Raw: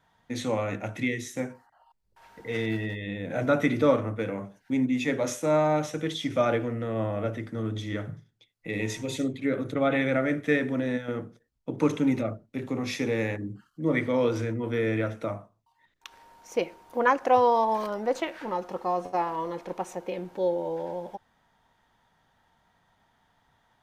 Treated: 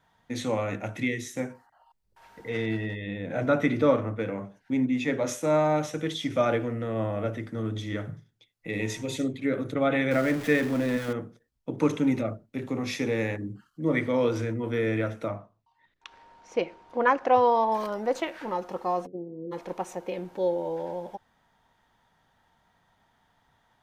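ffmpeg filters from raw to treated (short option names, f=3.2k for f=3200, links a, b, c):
-filter_complex "[0:a]asettb=1/sr,asplit=3[a][b][c];[a]atrim=end=2.494[d];[b]atrim=start=2.49:end=5.29,asetpts=PTS-STARTPTS,afade=t=in:d=0.004:c=qsin,afade=t=out:st=2.796:d=0.004:c=qsin,highshelf=f=6.7k:g=-9.5[e];[c]atrim=start=5.286[f];[d][e]acrossfade=d=0.004:c1=hsin:c2=qsin[g];[g][f]acrossfade=d=0.004:c1=qsin:c2=hsin,asettb=1/sr,asplit=3[h][i][j];[h]atrim=end=10.114[k];[i]atrim=start=10.11:end=11.13,asetpts=PTS-STARTPTS,afade=t=in:d=0.004:c=qsin,afade=t=out:st=1.016:d=0.004:c=qsin,aeval=exprs='val(0)+0.5*0.0211*sgn(val(0))':c=same[l];[j]atrim=start=11.126[m];[k][l]acrossfade=d=0.004:c1=hsin:c2=qsin[n];[n][m]acrossfade=d=0.004:c1=qsin:c2=hsin,asettb=1/sr,asplit=3[o][p][q];[o]atrim=end=15.284[r];[p]atrim=start=15.28:end=17.72,asetpts=PTS-STARTPTS,afade=t=in:d=0.004:c=qsin,afade=t=out:st=2.436:d=0.004:c=qsin,lowpass=4.6k[s];[q]atrim=start=17.716[t];[r][s]acrossfade=d=0.004:c1=hsin:c2=qsin[u];[u][t]acrossfade=d=0.004:c1=qsin:c2=hsin,asplit=3[v][w][x];[v]afade=t=out:st=19.05:d=0.02[y];[w]asuperpass=centerf=230:order=12:qfactor=0.64,afade=t=in:st=19.05:d=0.02,afade=t=out:st=19.51:d=0.02[z];[x]afade=t=in:st=19.51:d=0.02[aa];[y][z][aa]amix=inputs=3:normalize=0"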